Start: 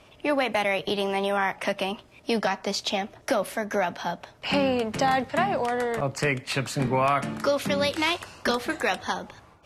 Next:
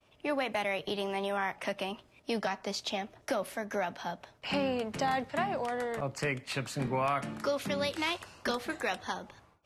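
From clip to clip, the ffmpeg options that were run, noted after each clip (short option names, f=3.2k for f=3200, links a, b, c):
-af "agate=range=-33dB:threshold=-49dB:ratio=3:detection=peak,volume=-7.5dB"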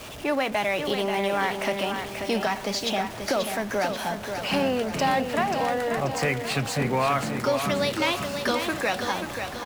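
-af "aeval=exprs='val(0)+0.5*0.01*sgn(val(0))':c=same,aecho=1:1:535|1070|1605|2140|2675|3210:0.447|0.232|0.121|0.0628|0.0327|0.017,volume=5.5dB"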